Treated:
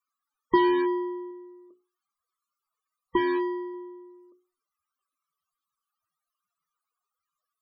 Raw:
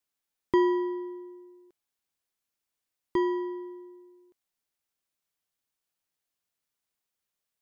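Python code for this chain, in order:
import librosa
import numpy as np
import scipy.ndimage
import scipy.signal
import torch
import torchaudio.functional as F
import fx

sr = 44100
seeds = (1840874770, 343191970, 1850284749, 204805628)

p1 = fx.peak_eq(x, sr, hz=1200.0, db=10.0, octaves=0.26)
p2 = fx.hum_notches(p1, sr, base_hz=60, count=7)
p3 = (np.mod(10.0 ** (26.5 / 20.0) * p2 + 1.0, 2.0) - 1.0) / 10.0 ** (26.5 / 20.0)
p4 = p2 + F.gain(torch.from_numpy(p3), -7.5).numpy()
p5 = fx.spec_topn(p4, sr, count=32)
p6 = fx.doubler(p5, sr, ms=29.0, db=-14, at=(1.28, 3.74))
y = F.gain(torch.from_numpy(p6), 4.5).numpy()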